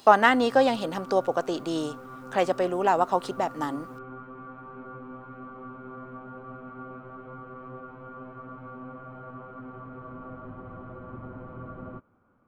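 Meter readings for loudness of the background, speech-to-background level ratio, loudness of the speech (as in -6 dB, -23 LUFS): -42.5 LUFS, 17.5 dB, -25.0 LUFS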